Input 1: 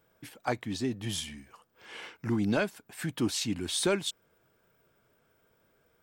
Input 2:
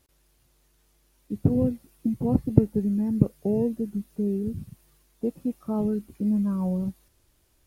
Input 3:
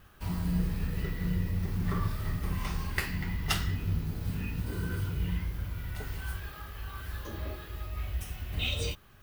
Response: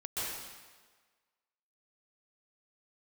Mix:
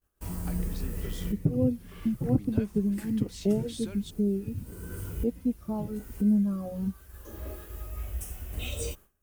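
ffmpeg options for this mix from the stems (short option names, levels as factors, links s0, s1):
-filter_complex "[0:a]acompressor=threshold=0.0316:ratio=6,volume=0.335[s0];[1:a]alimiter=limit=0.266:level=0:latency=1:release=277,asplit=2[s1][s2];[s2]adelay=3,afreqshift=-1.4[s3];[s1][s3]amix=inputs=2:normalize=1,volume=1.26,asplit=2[s4][s5];[2:a]equalizer=f=125:t=o:w=1:g=-9,equalizer=f=500:t=o:w=1:g=3,equalizer=f=2000:t=o:w=1:g=-5,equalizer=f=4000:t=o:w=1:g=-11,equalizer=f=8000:t=o:w=1:g=7,equalizer=f=16000:t=o:w=1:g=4,volume=1.12[s6];[s5]apad=whole_len=406667[s7];[s6][s7]sidechaincompress=threshold=0.0126:ratio=16:attack=16:release=641[s8];[s0][s4][s8]amix=inputs=3:normalize=0,agate=range=0.0224:threshold=0.00708:ratio=3:detection=peak,equalizer=f=910:w=0.97:g=-4.5"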